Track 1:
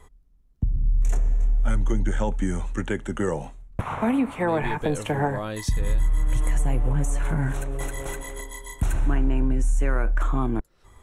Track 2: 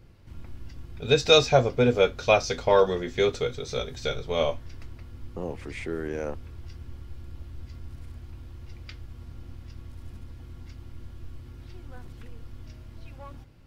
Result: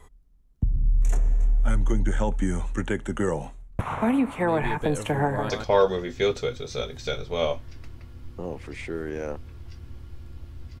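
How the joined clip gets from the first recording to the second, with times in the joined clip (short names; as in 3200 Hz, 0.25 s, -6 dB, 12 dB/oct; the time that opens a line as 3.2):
track 1
5.24–5.5 echo throw 0.14 s, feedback 10%, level -4.5 dB
5.5 switch to track 2 from 2.48 s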